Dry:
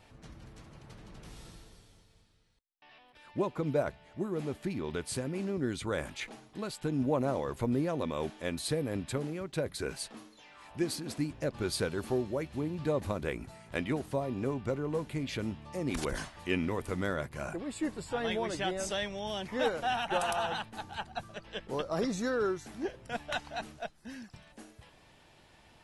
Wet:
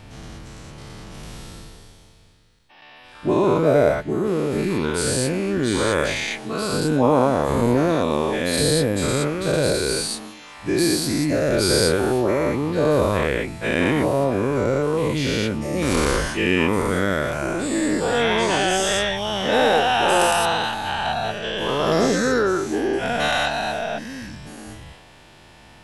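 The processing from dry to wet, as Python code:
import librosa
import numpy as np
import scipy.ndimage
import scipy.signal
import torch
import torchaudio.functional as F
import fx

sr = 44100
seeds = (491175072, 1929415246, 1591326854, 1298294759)

y = fx.spec_dilate(x, sr, span_ms=240)
y = y * 10.0 ** (7.0 / 20.0)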